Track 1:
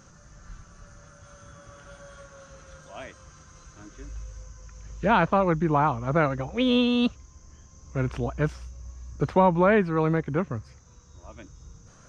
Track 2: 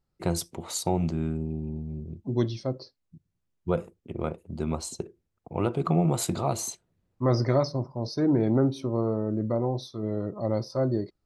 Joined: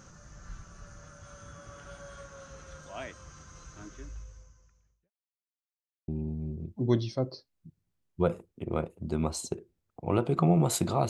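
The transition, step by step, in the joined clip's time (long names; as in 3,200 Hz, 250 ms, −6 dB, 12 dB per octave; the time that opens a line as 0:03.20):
track 1
0:03.86–0:05.11: fade out quadratic
0:05.11–0:06.08: silence
0:06.08: continue with track 2 from 0:01.56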